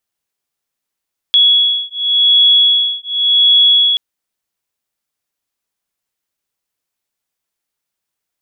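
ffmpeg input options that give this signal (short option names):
-f lavfi -i "aevalsrc='0.266*(sin(2*PI*3360*t)+sin(2*PI*3360.89*t))':d=2.63:s=44100"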